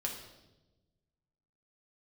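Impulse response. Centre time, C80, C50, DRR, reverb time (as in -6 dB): 32 ms, 8.0 dB, 5.5 dB, -0.5 dB, 1.1 s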